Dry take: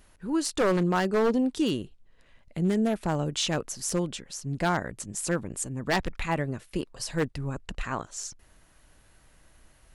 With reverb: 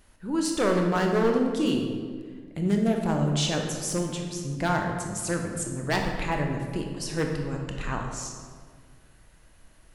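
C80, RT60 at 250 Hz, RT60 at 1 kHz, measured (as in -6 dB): 5.5 dB, 2.2 s, 1.6 s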